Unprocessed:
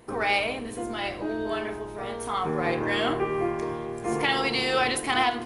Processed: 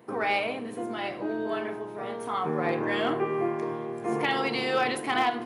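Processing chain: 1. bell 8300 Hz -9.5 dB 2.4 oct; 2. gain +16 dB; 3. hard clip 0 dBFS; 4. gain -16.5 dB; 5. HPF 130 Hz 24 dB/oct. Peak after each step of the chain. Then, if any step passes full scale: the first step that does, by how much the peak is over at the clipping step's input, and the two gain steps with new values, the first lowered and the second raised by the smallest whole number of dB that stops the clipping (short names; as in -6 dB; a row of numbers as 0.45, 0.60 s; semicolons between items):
-13.0, +3.0, 0.0, -16.5, -12.0 dBFS; step 2, 3.0 dB; step 2 +13 dB, step 4 -13.5 dB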